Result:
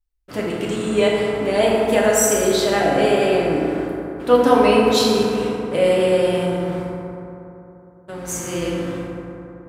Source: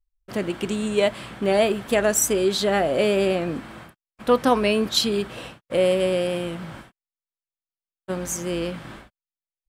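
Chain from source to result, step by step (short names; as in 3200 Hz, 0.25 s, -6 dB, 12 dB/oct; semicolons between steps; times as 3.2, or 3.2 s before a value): 6.45–8.28 compressor, threshold -30 dBFS, peak gain reduction 7 dB; FDN reverb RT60 3.2 s, high-frequency decay 0.35×, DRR -5.5 dB; gain -1.5 dB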